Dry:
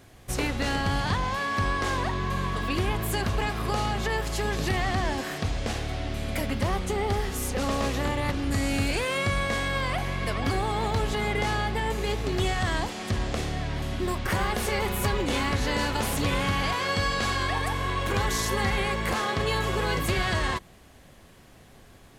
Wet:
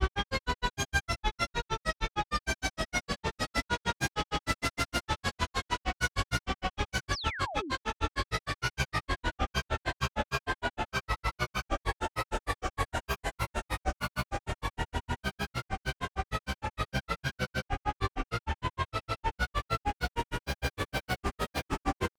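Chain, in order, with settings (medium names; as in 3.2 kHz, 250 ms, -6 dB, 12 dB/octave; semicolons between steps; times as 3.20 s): Paulstretch 20×, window 0.25 s, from 17.02 s; granulator 86 ms, grains 6.5 per s, pitch spread up and down by 7 st; painted sound fall, 7.12–7.72 s, 230–6500 Hz -39 dBFS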